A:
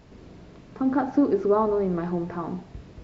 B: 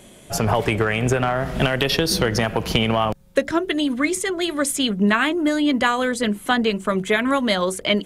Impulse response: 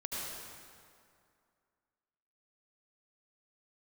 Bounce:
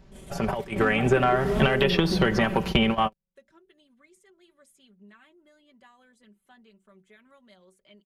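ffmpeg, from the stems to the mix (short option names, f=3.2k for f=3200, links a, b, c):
-filter_complex "[0:a]lowshelf=f=91:g=9,acompressor=threshold=-23dB:ratio=6,volume=-5.5dB,asplit=2[a][b];[1:a]volume=-2.5dB[c];[b]apad=whole_len=355157[d];[c][d]sidechaingate=range=-36dB:threshold=-47dB:ratio=16:detection=peak[e];[a][e]amix=inputs=2:normalize=0,acrossover=split=3500[f][g];[g]acompressor=threshold=-44dB:ratio=4:attack=1:release=60[h];[f][h]amix=inputs=2:normalize=0,aecho=1:1:5.2:0.62"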